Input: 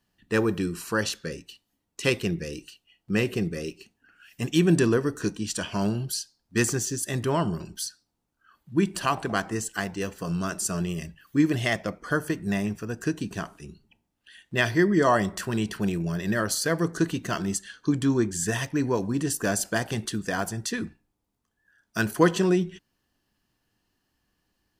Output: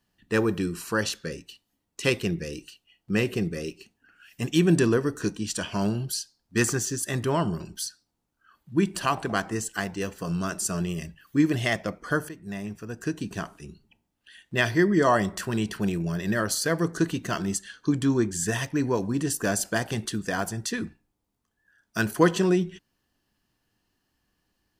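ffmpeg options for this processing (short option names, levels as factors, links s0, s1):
-filter_complex "[0:a]asettb=1/sr,asplit=3[s0][s1][s2];[s0]atrim=end=6.614[s3];[s1]atrim=start=6.61:end=7.23,asetpts=PTS-STARTPTS,afade=t=in:d=0.004:c=qsin,afade=t=out:st=0.616:d=0.004:c=qsin,equalizer=f=1300:w=1.5:g=5[s4];[s2]atrim=start=7.226[s5];[s3][s4]acrossfade=d=0.004:c1=hsin:c2=qsin[s6];[s6][s5]acrossfade=d=0.004:c1=qsin:c2=hsin,asplit=2[s7][s8];[s7]atrim=end=12.29,asetpts=PTS-STARTPTS,afade=t=out:st=12.286:d=0.004:c=hsin:silence=0.211349[s9];[s8]atrim=start=12.29,asetpts=PTS-STARTPTS,afade=t=in:d=1.1:silence=0.211349[s10];[s9][s10]concat=n=2:v=0:a=1"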